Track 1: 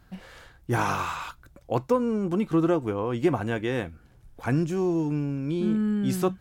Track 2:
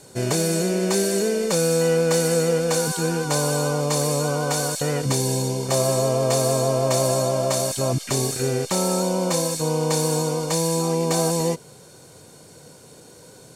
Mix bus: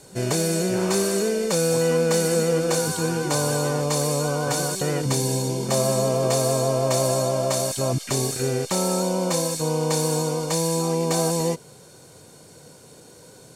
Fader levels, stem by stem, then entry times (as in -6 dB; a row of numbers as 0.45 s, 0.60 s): -10.0 dB, -1.0 dB; 0.00 s, 0.00 s